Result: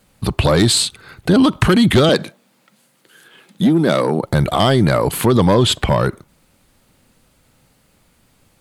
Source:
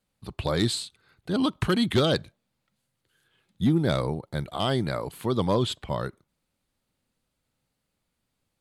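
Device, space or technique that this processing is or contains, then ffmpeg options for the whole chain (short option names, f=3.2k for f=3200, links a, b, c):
mastering chain: -filter_complex "[0:a]equalizer=f=3.9k:t=o:w=0.77:g=-3,acompressor=threshold=-24dB:ratio=3,asoftclip=type=tanh:threshold=-18dB,asoftclip=type=hard:threshold=-21.5dB,alimiter=level_in=27.5dB:limit=-1dB:release=50:level=0:latency=1,asettb=1/sr,asplit=3[a][b][c];[a]atrim=end=2.094[d];[b]atrim=start=2.09:end=4.23,asetpts=PTS-STARTPTS,afade=t=in:d=0.004:c=qsin,afade=t=out:st=2.136:d=0.004:c=qsin,highpass=f=180:w=0.5412,highpass=f=180:w=1.3066[e];[c]atrim=start=4.226[f];[d][e]acrossfade=d=0.004:c1=hsin:c2=qsin[g];[g][f]acrossfade=d=0.004:c1=qsin:c2=hsin,volume=-5dB"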